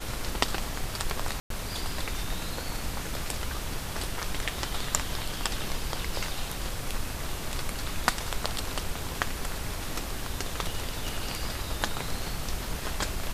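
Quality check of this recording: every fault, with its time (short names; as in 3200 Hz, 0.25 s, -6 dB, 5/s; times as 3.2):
1.4–1.5 gap 0.103 s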